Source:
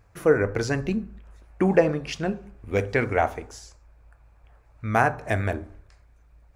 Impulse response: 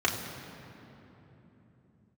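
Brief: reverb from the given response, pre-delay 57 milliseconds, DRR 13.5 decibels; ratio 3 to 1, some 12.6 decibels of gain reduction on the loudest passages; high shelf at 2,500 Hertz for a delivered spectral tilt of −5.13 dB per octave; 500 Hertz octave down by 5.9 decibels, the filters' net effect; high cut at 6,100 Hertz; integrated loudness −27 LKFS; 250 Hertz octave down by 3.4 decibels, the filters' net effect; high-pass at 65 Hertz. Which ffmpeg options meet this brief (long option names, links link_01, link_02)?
-filter_complex "[0:a]highpass=65,lowpass=6100,equalizer=frequency=250:width_type=o:gain=-3,equalizer=frequency=500:width_type=o:gain=-6.5,highshelf=frequency=2500:gain=5,acompressor=threshold=-35dB:ratio=3,asplit=2[link_01][link_02];[1:a]atrim=start_sample=2205,adelay=57[link_03];[link_02][link_03]afir=irnorm=-1:irlink=0,volume=-25.5dB[link_04];[link_01][link_04]amix=inputs=2:normalize=0,volume=10.5dB"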